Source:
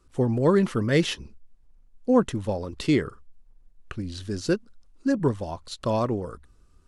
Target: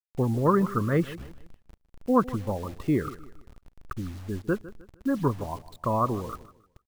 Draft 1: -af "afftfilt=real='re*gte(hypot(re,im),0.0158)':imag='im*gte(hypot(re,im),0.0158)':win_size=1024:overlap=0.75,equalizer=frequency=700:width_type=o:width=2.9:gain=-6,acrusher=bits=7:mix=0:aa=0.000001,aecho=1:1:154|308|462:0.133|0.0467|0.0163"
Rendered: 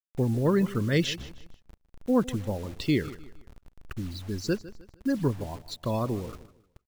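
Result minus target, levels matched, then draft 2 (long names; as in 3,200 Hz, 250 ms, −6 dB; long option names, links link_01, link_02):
1,000 Hz band −8.0 dB
-af "afftfilt=real='re*gte(hypot(re,im),0.0158)':imag='im*gte(hypot(re,im),0.0158)':win_size=1024:overlap=0.75,lowpass=frequency=1200:width_type=q:width=4.4,equalizer=frequency=700:width_type=o:width=2.9:gain=-6,acrusher=bits=7:mix=0:aa=0.000001,aecho=1:1:154|308|462:0.133|0.0467|0.0163"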